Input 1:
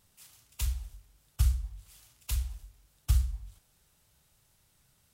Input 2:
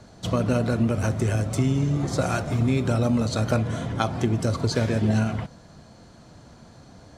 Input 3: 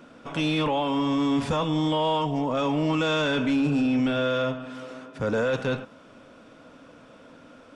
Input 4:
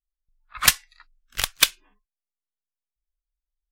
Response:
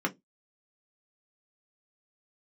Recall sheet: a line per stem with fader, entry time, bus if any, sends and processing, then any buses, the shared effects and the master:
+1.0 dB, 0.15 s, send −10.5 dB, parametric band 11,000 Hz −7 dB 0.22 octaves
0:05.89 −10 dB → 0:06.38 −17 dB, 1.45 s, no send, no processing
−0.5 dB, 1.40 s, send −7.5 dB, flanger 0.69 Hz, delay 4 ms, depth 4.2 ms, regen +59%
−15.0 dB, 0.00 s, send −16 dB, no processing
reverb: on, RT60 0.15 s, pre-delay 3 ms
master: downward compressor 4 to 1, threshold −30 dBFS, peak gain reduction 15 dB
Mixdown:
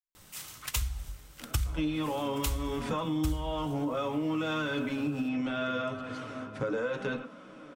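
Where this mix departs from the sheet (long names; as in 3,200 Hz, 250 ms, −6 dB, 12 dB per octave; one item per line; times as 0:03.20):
stem 1 +1.0 dB → +11.5 dB
stem 2 −10.0 dB → −20.5 dB
stem 4 −15.0 dB → −24.5 dB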